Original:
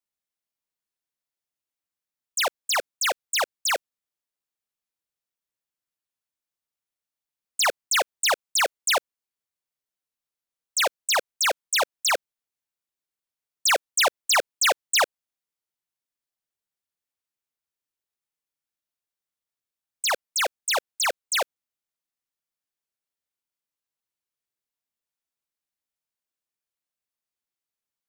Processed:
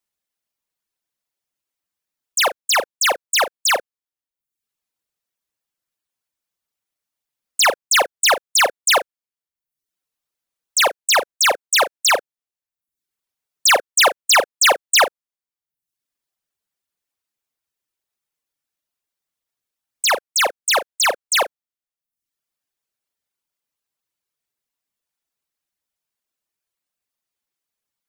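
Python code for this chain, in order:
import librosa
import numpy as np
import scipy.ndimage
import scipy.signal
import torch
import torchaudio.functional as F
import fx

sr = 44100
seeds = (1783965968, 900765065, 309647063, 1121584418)

y = fx.dereverb_blind(x, sr, rt60_s=0.68)
y = fx.doubler(y, sr, ms=38.0, db=-12.5)
y = F.gain(torch.from_numpy(y), 7.0).numpy()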